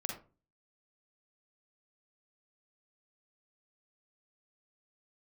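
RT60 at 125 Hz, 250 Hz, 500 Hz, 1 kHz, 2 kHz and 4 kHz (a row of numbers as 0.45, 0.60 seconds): 0.55, 0.45, 0.35, 0.30, 0.25, 0.20 seconds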